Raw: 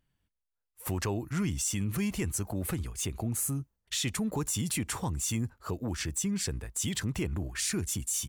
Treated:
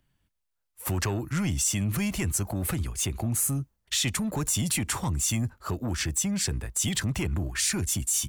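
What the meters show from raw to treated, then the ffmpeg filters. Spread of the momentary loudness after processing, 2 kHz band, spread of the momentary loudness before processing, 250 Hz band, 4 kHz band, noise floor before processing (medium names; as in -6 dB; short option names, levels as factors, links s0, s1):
5 LU, +5.5 dB, 5 LU, +2.5 dB, +5.5 dB, -85 dBFS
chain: -filter_complex "[0:a]bandreject=f=460:w=12,acrossover=split=150|1100|2500[s0][s1][s2][s3];[s1]asoftclip=type=tanh:threshold=0.0211[s4];[s0][s4][s2][s3]amix=inputs=4:normalize=0,volume=1.88"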